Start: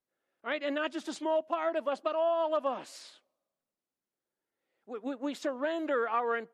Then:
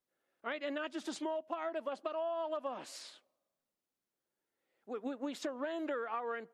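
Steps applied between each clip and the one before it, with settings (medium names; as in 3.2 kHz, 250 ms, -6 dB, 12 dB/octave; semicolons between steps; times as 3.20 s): compression, threshold -35 dBFS, peak gain reduction 10 dB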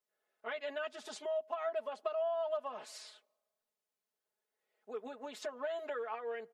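resonant low shelf 370 Hz -7 dB, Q 1.5; comb 4.7 ms, depth 89%; trim -4 dB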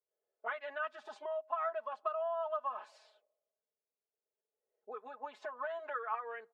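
spectral noise reduction 7 dB; auto-wah 470–1200 Hz, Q 2.4, up, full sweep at -40.5 dBFS; trim +8 dB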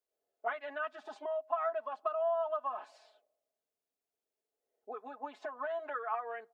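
small resonant body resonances 290/710 Hz, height 11 dB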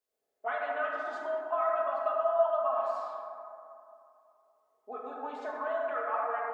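plate-style reverb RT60 2.7 s, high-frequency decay 0.3×, DRR -3.5 dB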